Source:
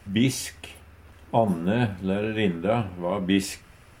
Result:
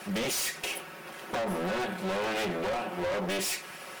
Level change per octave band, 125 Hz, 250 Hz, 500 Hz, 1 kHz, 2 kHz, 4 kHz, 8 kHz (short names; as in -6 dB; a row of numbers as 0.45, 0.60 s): -13.0 dB, -11.0 dB, -4.5 dB, -3.0 dB, 0.0 dB, -0.5 dB, n/a